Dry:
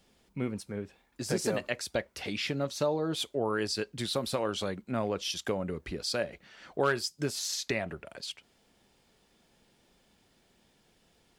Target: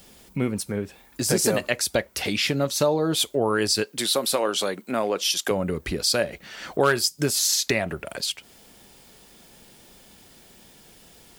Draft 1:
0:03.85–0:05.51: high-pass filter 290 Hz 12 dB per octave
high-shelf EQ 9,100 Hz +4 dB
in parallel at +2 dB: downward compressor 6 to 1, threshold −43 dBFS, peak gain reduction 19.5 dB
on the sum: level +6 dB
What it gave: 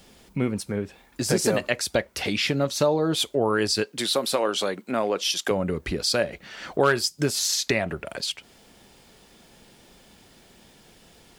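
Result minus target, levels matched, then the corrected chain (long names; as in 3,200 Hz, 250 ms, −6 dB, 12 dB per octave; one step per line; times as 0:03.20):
8,000 Hz band −2.5 dB
0:03.85–0:05.51: high-pass filter 290 Hz 12 dB per octave
high-shelf EQ 9,100 Hz +15 dB
in parallel at +2 dB: downward compressor 6 to 1, threshold −43 dBFS, peak gain reduction 19.5 dB
on the sum: level +6 dB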